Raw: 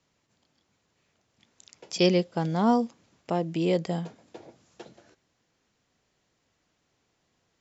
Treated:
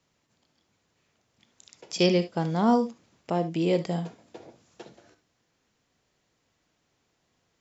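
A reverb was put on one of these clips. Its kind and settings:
reverb whose tail is shaped and stops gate 90 ms rising, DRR 11 dB

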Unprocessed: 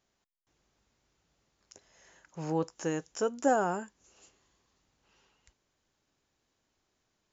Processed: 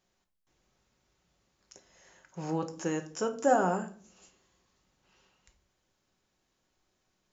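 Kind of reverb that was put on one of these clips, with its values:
rectangular room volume 400 cubic metres, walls furnished, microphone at 1 metre

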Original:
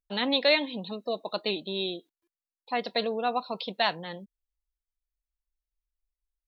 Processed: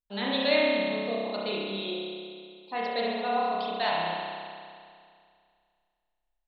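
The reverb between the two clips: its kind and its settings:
spring reverb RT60 2.2 s, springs 30 ms, chirp 40 ms, DRR −6 dB
level −6 dB

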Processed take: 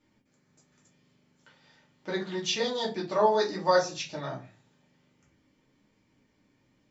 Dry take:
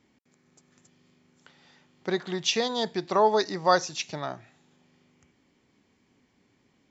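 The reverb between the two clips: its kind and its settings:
rectangular room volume 130 cubic metres, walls furnished, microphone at 2.5 metres
level −8.5 dB

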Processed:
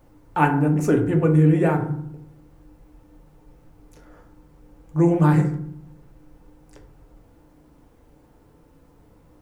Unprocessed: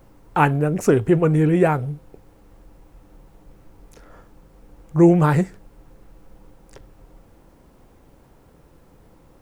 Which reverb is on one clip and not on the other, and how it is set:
feedback delay network reverb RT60 0.66 s, low-frequency decay 1.6×, high-frequency decay 0.45×, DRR 2.5 dB
level −5.5 dB

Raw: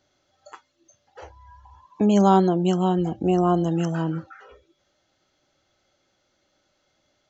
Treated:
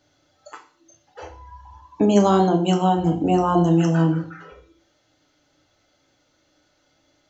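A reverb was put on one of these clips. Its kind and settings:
feedback delay network reverb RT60 0.45 s, low-frequency decay 1.45×, high-frequency decay 0.95×, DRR 2 dB
level +2.5 dB

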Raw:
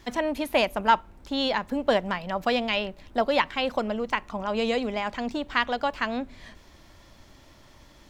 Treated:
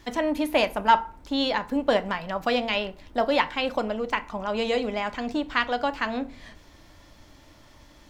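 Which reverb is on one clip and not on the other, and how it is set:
feedback delay network reverb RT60 0.4 s, low-frequency decay 1.05×, high-frequency decay 0.65×, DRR 9.5 dB

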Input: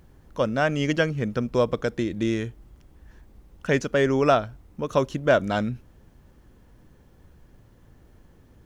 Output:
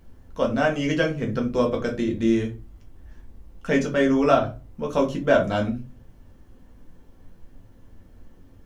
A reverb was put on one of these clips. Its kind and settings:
rectangular room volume 120 cubic metres, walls furnished, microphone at 1.6 metres
level −3.5 dB

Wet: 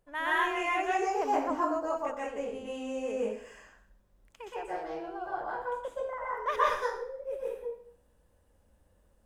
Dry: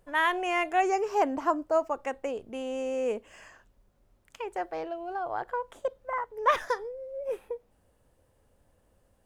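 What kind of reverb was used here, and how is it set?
dense smooth reverb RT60 0.58 s, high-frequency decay 0.9×, pre-delay 110 ms, DRR −6 dB
level −9 dB

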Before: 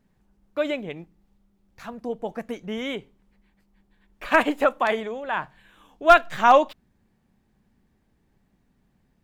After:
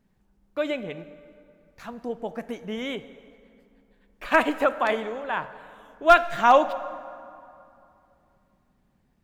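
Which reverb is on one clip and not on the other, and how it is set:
dense smooth reverb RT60 2.7 s, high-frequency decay 0.6×, DRR 13 dB
level −1.5 dB

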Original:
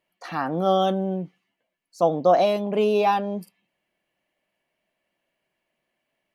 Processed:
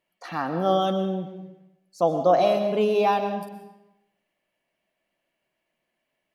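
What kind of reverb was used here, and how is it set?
comb and all-pass reverb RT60 0.91 s, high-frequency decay 0.9×, pre-delay 80 ms, DRR 7.5 dB
level −1.5 dB

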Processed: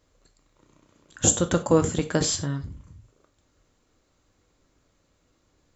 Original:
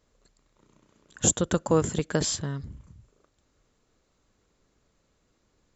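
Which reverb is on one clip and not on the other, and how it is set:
reverb whose tail is shaped and stops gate 120 ms falling, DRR 7 dB
level +2 dB

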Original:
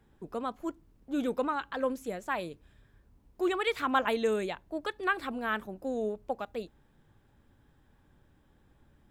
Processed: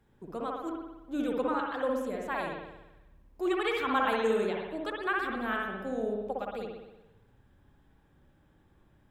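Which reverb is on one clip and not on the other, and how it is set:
spring reverb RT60 1 s, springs 58 ms, chirp 70 ms, DRR −1 dB
level −3 dB

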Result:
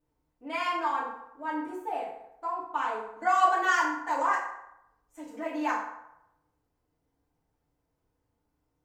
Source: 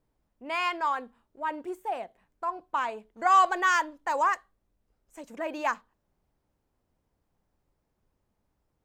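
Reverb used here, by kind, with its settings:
feedback delay network reverb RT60 0.84 s, low-frequency decay 0.75×, high-frequency decay 0.6×, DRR −7.5 dB
level −9 dB

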